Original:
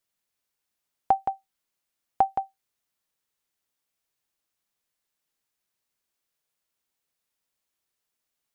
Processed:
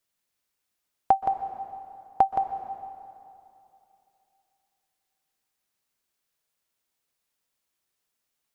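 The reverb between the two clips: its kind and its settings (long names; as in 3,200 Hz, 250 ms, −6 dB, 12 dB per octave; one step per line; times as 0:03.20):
dense smooth reverb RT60 2.8 s, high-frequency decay 0.8×, pre-delay 115 ms, DRR 9 dB
level +1.5 dB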